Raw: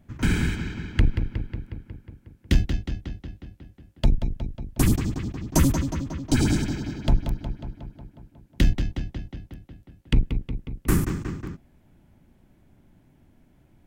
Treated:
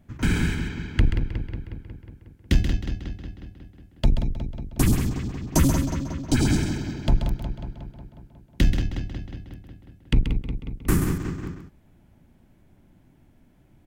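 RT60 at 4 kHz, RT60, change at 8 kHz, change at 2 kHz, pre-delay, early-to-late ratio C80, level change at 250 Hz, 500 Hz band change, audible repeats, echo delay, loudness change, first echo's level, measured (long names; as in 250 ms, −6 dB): no reverb audible, no reverb audible, +0.5 dB, +0.5 dB, no reverb audible, no reverb audible, +0.5 dB, +0.5 dB, 1, 132 ms, +0.5 dB, −8.0 dB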